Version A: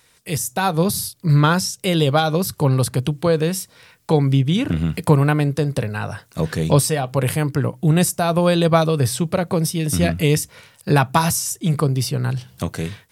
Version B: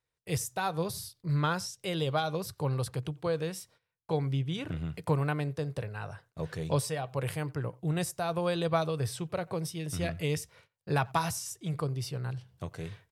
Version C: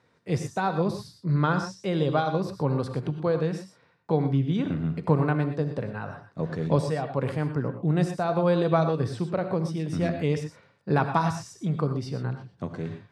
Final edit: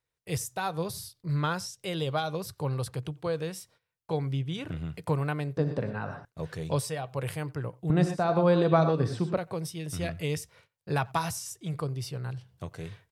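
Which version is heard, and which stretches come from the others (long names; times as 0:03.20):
B
0:05.57–0:06.25: punch in from C
0:07.90–0:09.37: punch in from C
not used: A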